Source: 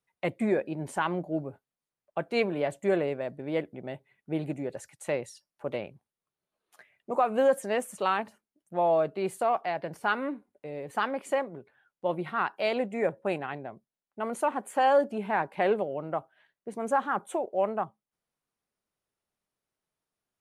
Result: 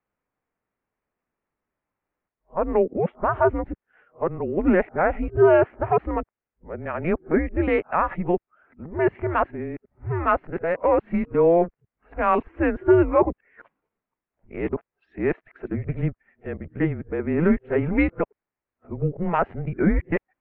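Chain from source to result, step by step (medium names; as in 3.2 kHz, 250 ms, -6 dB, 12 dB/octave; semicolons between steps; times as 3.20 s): reverse the whole clip; mistuned SSB -170 Hz 180–2500 Hz; trim +7 dB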